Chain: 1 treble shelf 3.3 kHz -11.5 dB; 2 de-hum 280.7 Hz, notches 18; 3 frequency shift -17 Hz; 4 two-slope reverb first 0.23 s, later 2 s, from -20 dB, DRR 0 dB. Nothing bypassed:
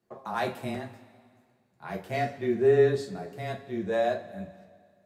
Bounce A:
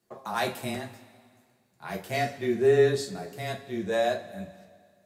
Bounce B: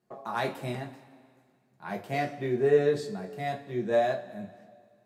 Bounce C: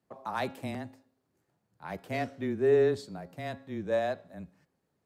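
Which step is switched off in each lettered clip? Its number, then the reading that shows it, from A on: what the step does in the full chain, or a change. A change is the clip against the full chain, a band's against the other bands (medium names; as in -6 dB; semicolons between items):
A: 1, 4 kHz band +6.5 dB; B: 3, 1 kHz band +2.0 dB; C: 4, loudness change -3.0 LU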